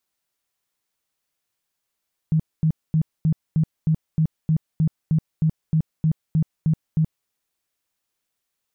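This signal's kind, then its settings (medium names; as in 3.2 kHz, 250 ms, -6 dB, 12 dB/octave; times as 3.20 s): tone bursts 158 Hz, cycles 12, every 0.31 s, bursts 16, -15 dBFS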